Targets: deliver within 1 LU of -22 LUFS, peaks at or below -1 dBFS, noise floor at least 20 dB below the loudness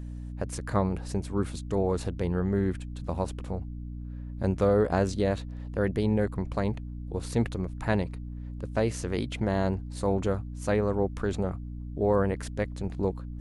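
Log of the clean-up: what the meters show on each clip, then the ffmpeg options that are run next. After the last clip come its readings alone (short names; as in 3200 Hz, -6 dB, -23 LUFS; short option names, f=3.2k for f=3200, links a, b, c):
hum 60 Hz; harmonics up to 300 Hz; hum level -35 dBFS; loudness -29.5 LUFS; peak -12.0 dBFS; loudness target -22.0 LUFS
-> -af "bandreject=f=60:t=h:w=6,bandreject=f=120:t=h:w=6,bandreject=f=180:t=h:w=6,bandreject=f=240:t=h:w=6,bandreject=f=300:t=h:w=6"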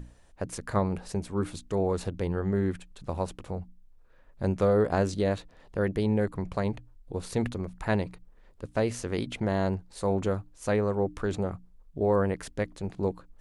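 hum none; loudness -30.0 LUFS; peak -13.5 dBFS; loudness target -22.0 LUFS
-> -af "volume=8dB"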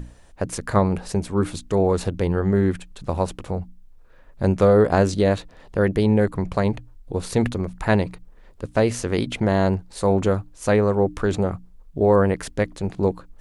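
loudness -22.0 LUFS; peak -5.5 dBFS; noise floor -48 dBFS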